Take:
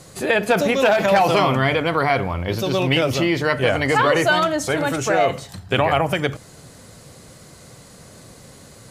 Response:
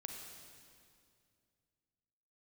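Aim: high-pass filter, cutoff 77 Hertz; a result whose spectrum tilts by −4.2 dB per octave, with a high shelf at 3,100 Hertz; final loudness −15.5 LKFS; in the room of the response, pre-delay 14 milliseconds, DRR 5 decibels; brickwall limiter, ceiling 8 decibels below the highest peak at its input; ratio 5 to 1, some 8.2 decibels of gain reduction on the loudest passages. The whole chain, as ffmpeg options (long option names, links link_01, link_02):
-filter_complex "[0:a]highpass=77,highshelf=frequency=3100:gain=4,acompressor=threshold=-21dB:ratio=5,alimiter=limit=-16dB:level=0:latency=1,asplit=2[link_01][link_02];[1:a]atrim=start_sample=2205,adelay=14[link_03];[link_02][link_03]afir=irnorm=-1:irlink=0,volume=-2dB[link_04];[link_01][link_04]amix=inputs=2:normalize=0,volume=9.5dB"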